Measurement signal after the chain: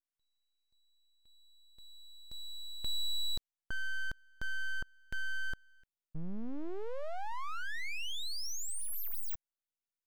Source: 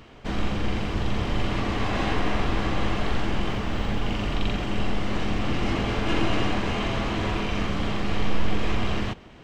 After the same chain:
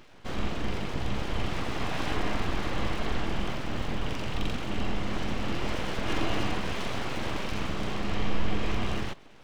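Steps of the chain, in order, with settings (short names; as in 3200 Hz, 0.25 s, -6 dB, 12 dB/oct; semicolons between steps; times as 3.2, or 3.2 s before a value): full-wave rectifier; gain -3.5 dB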